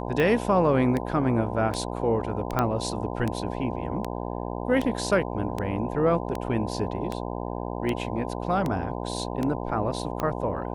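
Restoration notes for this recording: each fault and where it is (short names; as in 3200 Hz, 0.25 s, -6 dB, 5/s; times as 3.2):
buzz 60 Hz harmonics 17 -32 dBFS
tick 78 rpm -15 dBFS
2.59 pop -11 dBFS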